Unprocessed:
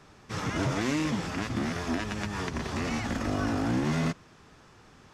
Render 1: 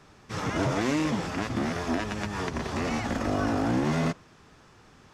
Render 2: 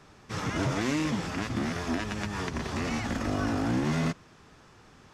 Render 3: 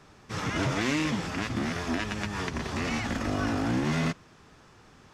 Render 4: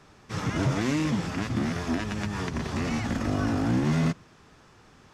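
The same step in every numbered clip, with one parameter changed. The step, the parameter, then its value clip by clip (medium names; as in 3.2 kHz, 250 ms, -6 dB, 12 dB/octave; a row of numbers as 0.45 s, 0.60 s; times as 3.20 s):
dynamic bell, frequency: 620 Hz, 9.9 kHz, 2.6 kHz, 140 Hz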